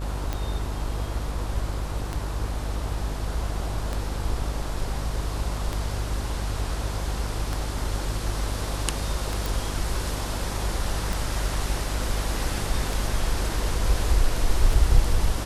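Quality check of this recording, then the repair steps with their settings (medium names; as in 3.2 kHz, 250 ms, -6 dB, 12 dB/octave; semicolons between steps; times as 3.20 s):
buzz 50 Hz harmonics 33 -30 dBFS
tick 33 1/3 rpm -14 dBFS
9.46 s: pop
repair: de-click; de-hum 50 Hz, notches 33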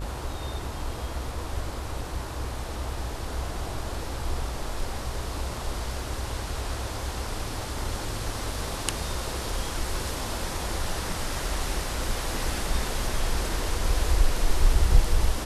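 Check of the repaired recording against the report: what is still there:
nothing left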